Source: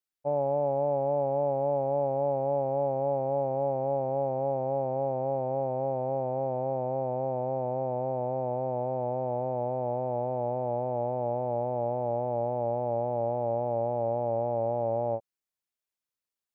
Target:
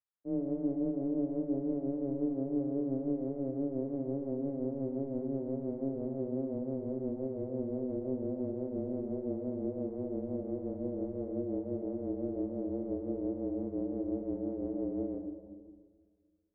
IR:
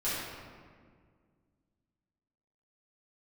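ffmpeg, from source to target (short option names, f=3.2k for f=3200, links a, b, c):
-filter_complex "[0:a]tremolo=f=5.8:d=0.53,asplit=2[a][b];[1:a]atrim=start_sample=2205[c];[b][c]afir=irnorm=-1:irlink=0,volume=-10dB[d];[a][d]amix=inputs=2:normalize=0,highpass=f=330:t=q:w=0.5412,highpass=f=330:t=q:w=1.307,lowpass=f=2k:t=q:w=0.5176,lowpass=f=2k:t=q:w=0.7071,lowpass=f=2k:t=q:w=1.932,afreqshift=-270,volume=-6dB"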